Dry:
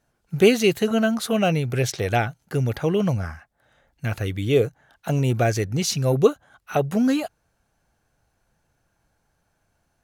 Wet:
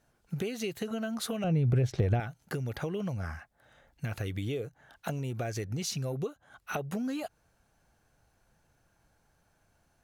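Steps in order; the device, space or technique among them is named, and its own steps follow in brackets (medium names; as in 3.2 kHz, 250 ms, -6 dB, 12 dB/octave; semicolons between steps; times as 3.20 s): serial compression, peaks first (compression 4:1, threshold -27 dBFS, peak gain reduction 14.5 dB; compression 2.5:1, threshold -33 dBFS, peak gain reduction 7.5 dB); 1.44–2.20 s: tilt EQ -3.5 dB/octave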